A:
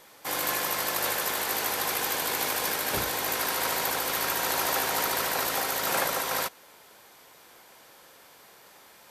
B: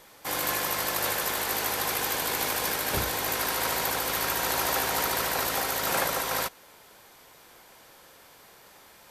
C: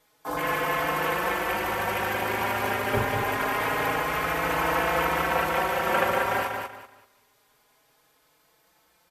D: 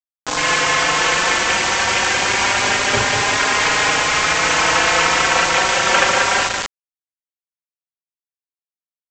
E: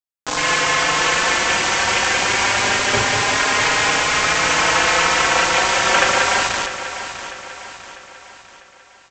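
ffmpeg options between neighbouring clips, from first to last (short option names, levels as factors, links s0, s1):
-af "lowshelf=f=90:g=11.5"
-filter_complex "[0:a]afwtdn=0.0251,aecho=1:1:191|382|573|764:0.562|0.152|0.041|0.0111,asplit=2[s0][s1];[s1]adelay=4.3,afreqshift=0.25[s2];[s0][s2]amix=inputs=2:normalize=1,volume=2.24"
-af "crystalizer=i=9:c=0,aresample=16000,acrusher=bits=3:mix=0:aa=0.000001,aresample=44100,volume=1.41"
-af "aecho=1:1:648|1296|1944|2592|3240:0.266|0.125|0.0588|0.0276|0.013,volume=0.891"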